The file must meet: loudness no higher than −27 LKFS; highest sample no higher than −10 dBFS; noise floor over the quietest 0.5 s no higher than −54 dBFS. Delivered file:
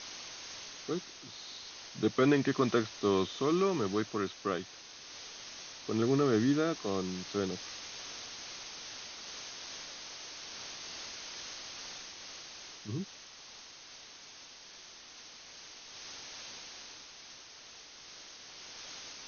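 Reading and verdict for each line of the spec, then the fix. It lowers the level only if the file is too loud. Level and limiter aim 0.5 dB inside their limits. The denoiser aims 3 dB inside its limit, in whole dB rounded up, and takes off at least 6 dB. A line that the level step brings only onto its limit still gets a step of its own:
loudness −35.5 LKFS: in spec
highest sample −14.5 dBFS: in spec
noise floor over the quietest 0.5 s −52 dBFS: out of spec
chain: broadband denoise 6 dB, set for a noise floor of −52 dBFS

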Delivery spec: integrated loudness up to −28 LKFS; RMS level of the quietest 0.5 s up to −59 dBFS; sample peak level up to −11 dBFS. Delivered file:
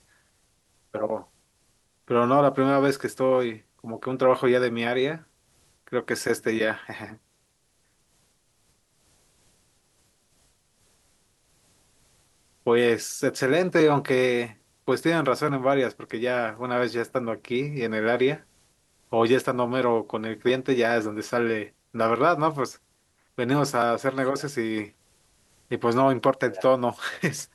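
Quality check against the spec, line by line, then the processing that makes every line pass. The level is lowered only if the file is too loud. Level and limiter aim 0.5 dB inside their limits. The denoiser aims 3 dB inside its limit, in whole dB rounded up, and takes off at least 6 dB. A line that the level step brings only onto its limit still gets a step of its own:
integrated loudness −24.5 LKFS: out of spec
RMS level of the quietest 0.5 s −68 dBFS: in spec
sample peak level −8.5 dBFS: out of spec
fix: level −4 dB

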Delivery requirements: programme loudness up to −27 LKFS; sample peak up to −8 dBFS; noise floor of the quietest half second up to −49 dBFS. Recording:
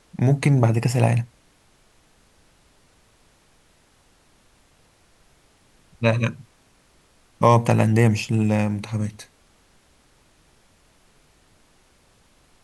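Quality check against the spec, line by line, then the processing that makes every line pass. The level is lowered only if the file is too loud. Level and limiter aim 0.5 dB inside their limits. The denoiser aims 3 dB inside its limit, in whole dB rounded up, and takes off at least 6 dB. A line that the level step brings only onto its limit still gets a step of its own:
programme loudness −20.5 LKFS: out of spec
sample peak −2.5 dBFS: out of spec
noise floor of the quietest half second −59 dBFS: in spec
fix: level −7 dB

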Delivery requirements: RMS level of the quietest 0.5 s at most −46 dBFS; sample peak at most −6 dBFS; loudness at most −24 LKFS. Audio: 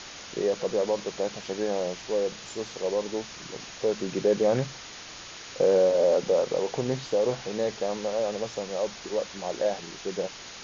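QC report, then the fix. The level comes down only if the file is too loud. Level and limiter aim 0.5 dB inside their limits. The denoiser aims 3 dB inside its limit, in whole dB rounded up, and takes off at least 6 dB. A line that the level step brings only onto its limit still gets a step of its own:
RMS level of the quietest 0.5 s −43 dBFS: out of spec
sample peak −12.5 dBFS: in spec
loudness −28.0 LKFS: in spec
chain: broadband denoise 6 dB, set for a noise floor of −43 dBFS

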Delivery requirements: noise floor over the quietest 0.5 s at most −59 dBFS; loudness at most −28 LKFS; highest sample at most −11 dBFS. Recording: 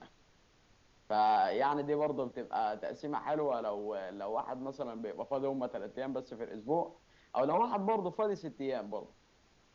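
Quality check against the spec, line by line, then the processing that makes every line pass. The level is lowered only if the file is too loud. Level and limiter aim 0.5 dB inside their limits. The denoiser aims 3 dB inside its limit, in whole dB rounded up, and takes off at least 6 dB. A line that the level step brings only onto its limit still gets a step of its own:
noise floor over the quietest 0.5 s −67 dBFS: in spec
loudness −35.0 LKFS: in spec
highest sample −20.0 dBFS: in spec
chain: no processing needed

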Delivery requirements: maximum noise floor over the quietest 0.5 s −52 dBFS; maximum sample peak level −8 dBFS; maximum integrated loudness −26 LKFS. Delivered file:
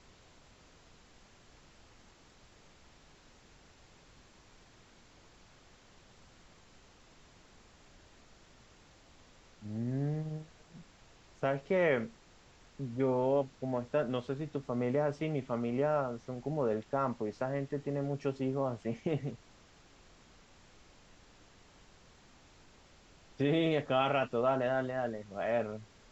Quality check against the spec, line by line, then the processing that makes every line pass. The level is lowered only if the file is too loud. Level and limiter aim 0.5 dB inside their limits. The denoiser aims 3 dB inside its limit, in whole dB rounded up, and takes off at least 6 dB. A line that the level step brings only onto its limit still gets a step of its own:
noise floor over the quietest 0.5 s −60 dBFS: in spec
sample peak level −17.0 dBFS: in spec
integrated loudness −34.0 LKFS: in spec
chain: no processing needed

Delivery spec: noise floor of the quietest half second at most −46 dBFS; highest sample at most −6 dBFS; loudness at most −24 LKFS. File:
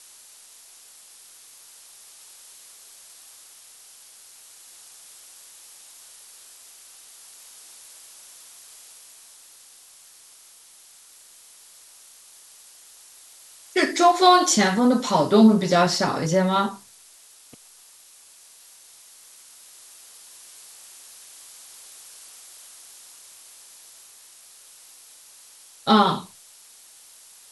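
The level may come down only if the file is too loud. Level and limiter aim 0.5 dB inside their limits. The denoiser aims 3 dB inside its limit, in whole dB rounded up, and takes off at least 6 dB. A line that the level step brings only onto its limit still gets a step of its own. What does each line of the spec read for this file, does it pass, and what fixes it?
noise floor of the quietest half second −51 dBFS: in spec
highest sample −3.5 dBFS: out of spec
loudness −19.0 LKFS: out of spec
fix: level −5.5 dB

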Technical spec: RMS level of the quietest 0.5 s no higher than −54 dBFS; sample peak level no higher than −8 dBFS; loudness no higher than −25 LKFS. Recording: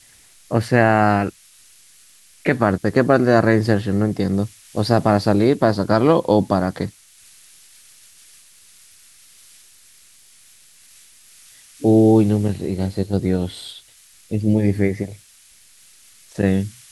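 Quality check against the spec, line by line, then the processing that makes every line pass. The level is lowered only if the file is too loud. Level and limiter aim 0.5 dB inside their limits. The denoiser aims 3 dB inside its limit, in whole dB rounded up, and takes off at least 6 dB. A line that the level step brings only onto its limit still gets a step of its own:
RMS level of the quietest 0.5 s −50 dBFS: out of spec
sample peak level −2.0 dBFS: out of spec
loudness −18.5 LKFS: out of spec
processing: level −7 dB

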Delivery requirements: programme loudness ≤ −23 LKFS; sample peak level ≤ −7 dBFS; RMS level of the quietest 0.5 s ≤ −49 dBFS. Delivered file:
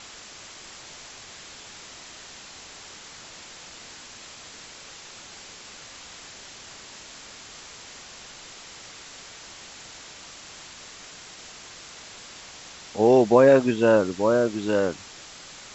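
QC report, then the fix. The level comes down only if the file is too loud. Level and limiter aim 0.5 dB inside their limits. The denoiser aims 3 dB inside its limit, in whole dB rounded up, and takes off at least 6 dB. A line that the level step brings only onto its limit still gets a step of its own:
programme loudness −20.0 LKFS: out of spec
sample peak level −5.0 dBFS: out of spec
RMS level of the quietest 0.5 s −44 dBFS: out of spec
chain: broadband denoise 6 dB, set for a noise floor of −44 dBFS
level −3.5 dB

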